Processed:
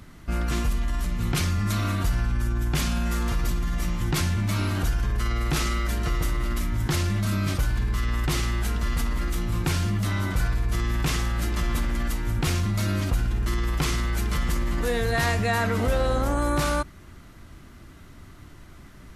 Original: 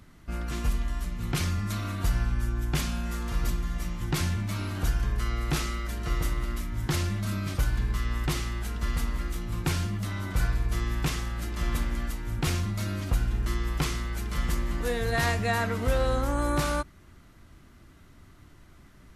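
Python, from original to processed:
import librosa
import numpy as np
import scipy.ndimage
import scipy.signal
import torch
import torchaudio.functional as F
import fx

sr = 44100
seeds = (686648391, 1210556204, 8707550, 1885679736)

p1 = fx.over_compress(x, sr, threshold_db=-31.0, ratio=-1.0)
p2 = x + F.gain(torch.from_numpy(p1), -1.5).numpy()
y = fx.dmg_buzz(p2, sr, base_hz=100.0, harmonics=8, level_db=-37.0, tilt_db=-1, odd_only=False, at=(15.78, 16.37), fade=0.02)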